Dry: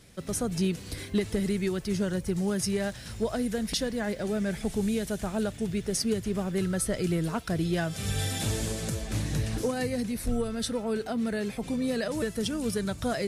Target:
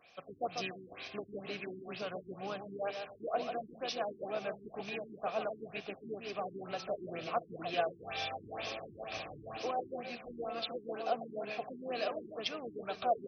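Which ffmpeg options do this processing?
ffmpeg -i in.wav -filter_complex "[0:a]crystalizer=i=9.5:c=0,asplit=3[link_01][link_02][link_03];[link_01]bandpass=frequency=730:width_type=q:width=8,volume=0dB[link_04];[link_02]bandpass=frequency=1090:width_type=q:width=8,volume=-6dB[link_05];[link_03]bandpass=frequency=2440:width_type=q:width=8,volume=-9dB[link_06];[link_04][link_05][link_06]amix=inputs=3:normalize=0,asplit=4[link_07][link_08][link_09][link_10];[link_08]asetrate=29433,aresample=44100,atempo=1.49831,volume=-14dB[link_11];[link_09]asetrate=33038,aresample=44100,atempo=1.33484,volume=-16dB[link_12];[link_10]asetrate=35002,aresample=44100,atempo=1.25992,volume=-17dB[link_13];[link_07][link_11][link_12][link_13]amix=inputs=4:normalize=0,aecho=1:1:144|288|432:0.473|0.128|0.0345,afftfilt=real='re*lt(b*sr/1024,390*pow(6400/390,0.5+0.5*sin(2*PI*2.1*pts/sr)))':imag='im*lt(b*sr/1024,390*pow(6400/390,0.5+0.5*sin(2*PI*2.1*pts/sr)))':win_size=1024:overlap=0.75,volume=3dB" out.wav

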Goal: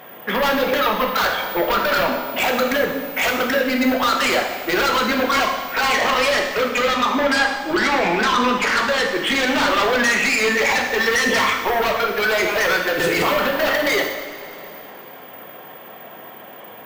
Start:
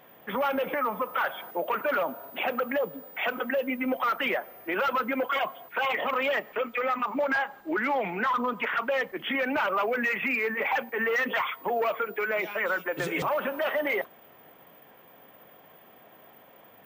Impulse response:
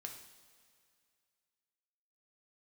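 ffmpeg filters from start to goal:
-filter_complex "[0:a]lowshelf=frequency=130:gain=-8.5,asplit=2[link_01][link_02];[link_02]aeval=exprs='0.168*sin(PI/2*3.98*val(0)/0.168)':channel_layout=same,volume=-4dB[link_03];[link_01][link_03]amix=inputs=2:normalize=0[link_04];[1:a]atrim=start_sample=2205,asetrate=33516,aresample=44100[link_05];[link_04][link_05]afir=irnorm=-1:irlink=0,volume=4dB"

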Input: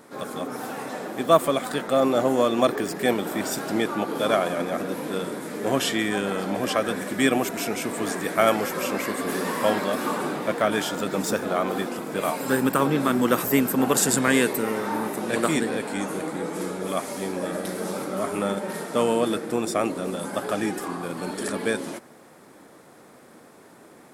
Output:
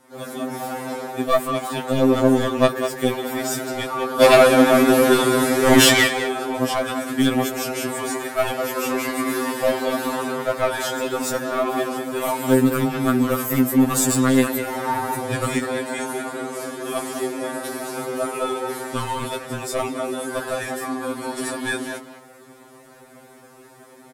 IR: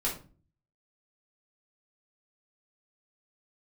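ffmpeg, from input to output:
-filter_complex "[0:a]dynaudnorm=framelen=120:gausssize=3:maxgain=6.5dB,aeval=exprs='clip(val(0),-1,0.211)':channel_layout=same,equalizer=frequency=15000:width=0.43:gain=3,asplit=3[link_01][link_02][link_03];[link_01]afade=type=out:start_time=4.2:duration=0.02[link_04];[link_02]aeval=exprs='0.668*sin(PI/2*2.82*val(0)/0.668)':channel_layout=same,afade=type=in:start_time=4.2:duration=0.02,afade=type=out:start_time=6.06:duration=0.02[link_05];[link_03]afade=type=in:start_time=6.06:duration=0.02[link_06];[link_04][link_05][link_06]amix=inputs=3:normalize=0,asettb=1/sr,asplit=3[link_07][link_08][link_09];[link_07]atrim=end=14.864[link_10];[link_08]atrim=start=14.86:end=15.52,asetpts=PTS-STARTPTS,afade=type=in:duration=0.004:curve=qsin,afade=type=out:start_time=0.656:duration=0.004:curve=qsin,equalizer=frequency=68:width=0.55:gain=15[link_11];[link_09]atrim=start=15.516[link_12];[link_10][link_11]acrossfade=duration=0.004:curve1=hsin:curve2=qsin[link_13];[link_13][link_12]acrossfade=duration=0.004:curve1=qsin:curve2=hsin,asplit=2[link_14][link_15];[link_15]adelay=200,highpass=300,lowpass=3400,asoftclip=type=hard:threshold=-10.5dB,volume=-7dB[link_16];[link_14][link_16]amix=inputs=2:normalize=0,afftfilt=real='re*2.45*eq(mod(b,6),0)':imag='im*2.45*eq(mod(b,6),0)':win_size=2048:overlap=0.75,volume=-2dB"

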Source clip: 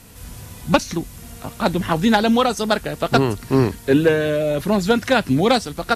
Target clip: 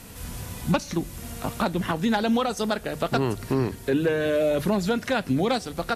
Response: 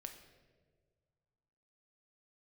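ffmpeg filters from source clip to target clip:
-filter_complex "[0:a]bandreject=frequency=50:width_type=h:width=6,bandreject=frequency=100:width_type=h:width=6,bandreject=frequency=150:width_type=h:width=6,alimiter=limit=-16.5dB:level=0:latency=1:release=494,asplit=2[link_01][link_02];[1:a]atrim=start_sample=2205,lowpass=4400[link_03];[link_02][link_03]afir=irnorm=-1:irlink=0,volume=-11dB[link_04];[link_01][link_04]amix=inputs=2:normalize=0,volume=1dB"

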